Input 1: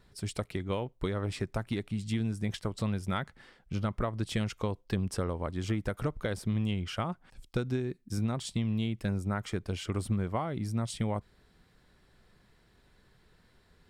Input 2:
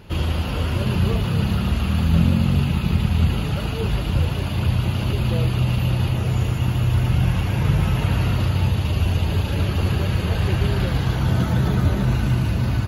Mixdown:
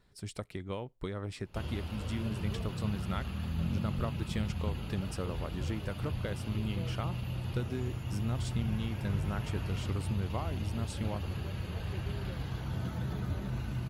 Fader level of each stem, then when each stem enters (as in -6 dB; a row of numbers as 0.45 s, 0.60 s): -5.5 dB, -16.5 dB; 0.00 s, 1.45 s